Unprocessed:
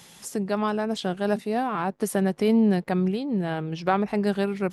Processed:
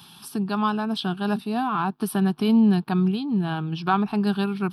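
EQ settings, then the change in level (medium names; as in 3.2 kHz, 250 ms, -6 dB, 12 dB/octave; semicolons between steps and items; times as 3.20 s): high-pass 90 Hz; static phaser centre 2 kHz, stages 6; +5.0 dB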